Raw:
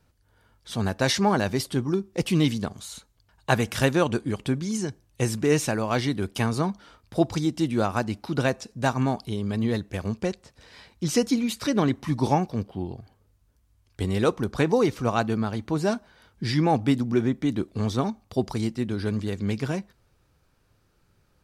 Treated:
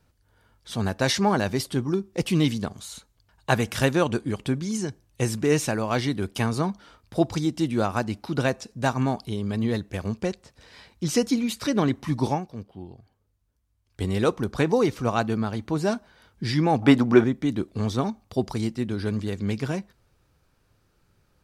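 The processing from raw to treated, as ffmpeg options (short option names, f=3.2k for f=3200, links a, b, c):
-filter_complex "[0:a]asettb=1/sr,asplit=3[a][b][c];[a]atrim=end=16.824[d];[b]atrim=start=16.82:end=17.24,asetpts=PTS-STARTPTS,afade=t=in:d=0.004:c=qsin,afade=t=out:st=0.416:d=0.004:c=qsin,equalizer=f=1k:w=0.34:g=13[e];[c]atrim=start=17.236[f];[d][e]acrossfade=d=0.004:c1=hsin:c2=qsin[g];[g][f]acrossfade=d=0.004:c1=qsin:c2=hsin,asplit=3[h][i][j];[h]atrim=end=12.42,asetpts=PTS-STARTPTS,afade=t=out:st=12.23:d=0.19:silence=0.375837[k];[i]atrim=start=12.42:end=13.85,asetpts=PTS-STARTPTS,volume=-8.5dB[l];[j]atrim=start=13.85,asetpts=PTS-STARTPTS,afade=t=in:d=0.19:silence=0.375837[m];[k][l][m]concat=n=3:v=0:a=1"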